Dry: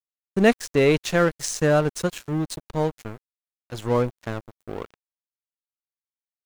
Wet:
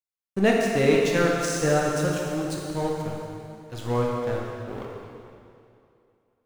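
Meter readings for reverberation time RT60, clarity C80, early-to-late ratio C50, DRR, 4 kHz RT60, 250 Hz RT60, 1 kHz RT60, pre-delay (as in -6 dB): 2.5 s, 1.5 dB, 0.0 dB, -2.5 dB, 2.3 s, 2.5 s, 2.5 s, 5 ms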